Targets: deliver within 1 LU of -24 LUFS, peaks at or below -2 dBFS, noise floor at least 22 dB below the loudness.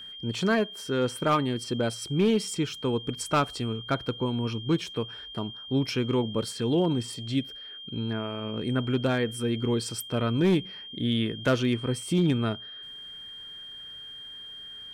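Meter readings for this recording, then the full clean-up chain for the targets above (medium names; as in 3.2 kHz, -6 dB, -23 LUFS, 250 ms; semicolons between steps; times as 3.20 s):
clipped samples 0.4%; clipping level -16.5 dBFS; steady tone 3.2 kHz; tone level -40 dBFS; loudness -28.0 LUFS; peak level -16.5 dBFS; loudness target -24.0 LUFS
-> clip repair -16.5 dBFS; band-stop 3.2 kHz, Q 30; trim +4 dB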